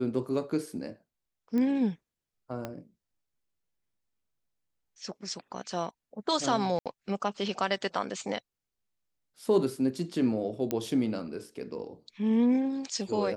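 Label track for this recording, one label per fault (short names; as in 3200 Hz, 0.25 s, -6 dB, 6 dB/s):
1.580000	1.580000	pop -21 dBFS
2.650000	2.650000	pop -21 dBFS
6.790000	6.860000	gap 67 ms
10.710000	10.710000	pop -15 dBFS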